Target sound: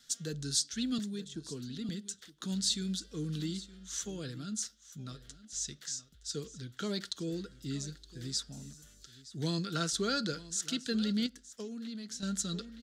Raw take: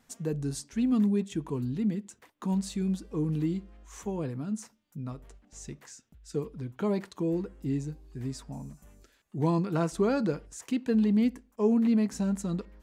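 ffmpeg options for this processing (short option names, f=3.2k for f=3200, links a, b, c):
-filter_complex "[0:a]firequalizer=gain_entry='entry(170,0);entry(950,-27);entry(1400,-4);entry(2400,-12);entry(3400,7);entry(8900,11)':delay=0.05:min_phase=1,asettb=1/sr,asplit=3[a][b][c];[a]atrim=end=0.984[d];[b]atrim=start=0.98:end=1.89,asetpts=PTS-STARTPTS,afade=t=in:d=0.004:c=qsin,afade=t=out:st=0.906:d=0.004:c=qsin,acrossover=split=170|1100[e][f][g];[e]acompressor=threshold=-45dB:ratio=4[h];[f]acompressor=threshold=-33dB:ratio=4[i];[g]acompressor=threshold=-53dB:ratio=4[j];[h][i][j]amix=inputs=3:normalize=0[k];[c]atrim=start=1.886[l];[d][k]acrossfade=d=0.004:c1=hsin:c2=qsin[m];[m][l]acrossfade=d=0.004:c1=qsin:c2=hsin,acrossover=split=540 5900:gain=0.178 1 0.112[n][o][p];[n][o][p]amix=inputs=3:normalize=0,aecho=1:1:918:0.133,asettb=1/sr,asplit=3[q][r][s];[q]atrim=end=11.264[t];[r]atrim=start=11.26:end=12.23,asetpts=PTS-STARTPTS,afade=t=in:d=0.004:c=qsin,afade=t=out:st=0.966:d=0.004:c=qsin,acompressor=threshold=-47dB:ratio=12[u];[s]atrim=start=12.226[v];[t][u]acrossfade=d=0.004:c1=hsin:c2=qsin[w];[w][v]acrossfade=d=0.004:c1=qsin:c2=hsin,volume=8dB"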